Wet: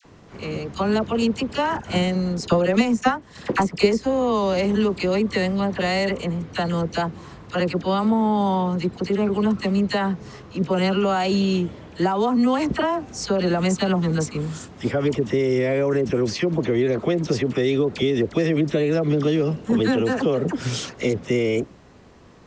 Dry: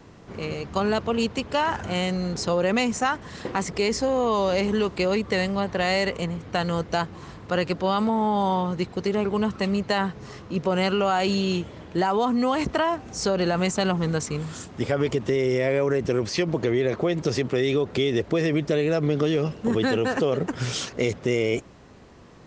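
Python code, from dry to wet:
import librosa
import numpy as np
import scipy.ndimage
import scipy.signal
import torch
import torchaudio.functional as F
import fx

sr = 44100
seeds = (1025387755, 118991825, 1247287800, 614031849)

y = fx.dynamic_eq(x, sr, hz=230.0, q=1.0, threshold_db=-36.0, ratio=4.0, max_db=5)
y = fx.transient(y, sr, attack_db=8, sustain_db=-9, at=(1.7, 4.01))
y = fx.dispersion(y, sr, late='lows', ms=48.0, hz=1200.0)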